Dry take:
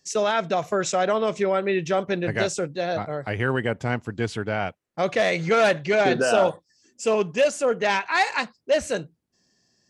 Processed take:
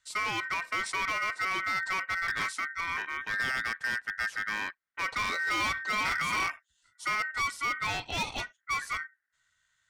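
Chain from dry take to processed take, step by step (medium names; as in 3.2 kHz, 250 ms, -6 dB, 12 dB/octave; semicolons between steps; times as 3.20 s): high-pass 50 Hz 24 dB/octave; bass shelf 280 Hz +11 dB; ring modulator 1.7 kHz; overload inside the chain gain 18.5 dB; trim -7 dB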